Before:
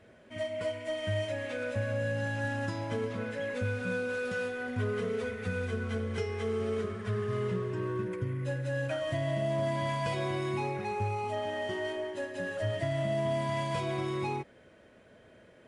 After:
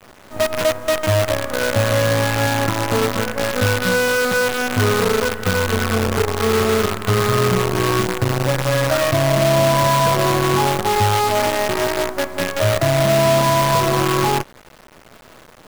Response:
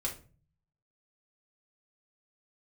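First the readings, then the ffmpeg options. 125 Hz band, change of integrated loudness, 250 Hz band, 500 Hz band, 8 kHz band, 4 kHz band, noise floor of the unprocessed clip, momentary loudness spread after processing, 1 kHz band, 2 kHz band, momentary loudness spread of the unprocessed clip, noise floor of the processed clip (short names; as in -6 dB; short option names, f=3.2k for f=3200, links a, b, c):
+13.5 dB, +15.5 dB, +14.0 dB, +14.5 dB, +27.0 dB, +20.5 dB, -58 dBFS, 5 LU, +19.0 dB, +15.5 dB, 4 LU, -45 dBFS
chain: -af "highshelf=f=1.8k:t=q:w=3:g=-12,acontrast=54,acrusher=bits=5:dc=4:mix=0:aa=0.000001,volume=7.5dB"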